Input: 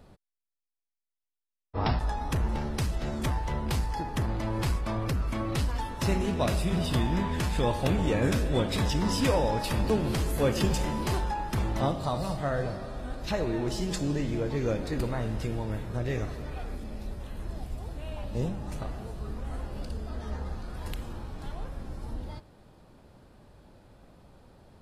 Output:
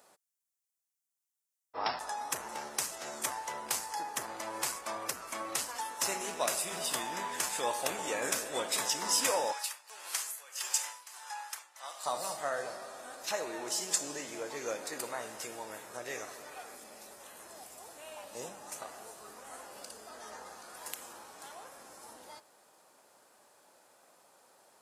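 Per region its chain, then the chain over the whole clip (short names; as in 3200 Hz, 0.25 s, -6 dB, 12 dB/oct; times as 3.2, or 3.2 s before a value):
9.52–12.06 HPF 1200 Hz + high shelf 12000 Hz -3 dB + tremolo 1.6 Hz, depth 86%
whole clip: HPF 700 Hz 12 dB/oct; resonant high shelf 5200 Hz +8.5 dB, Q 1.5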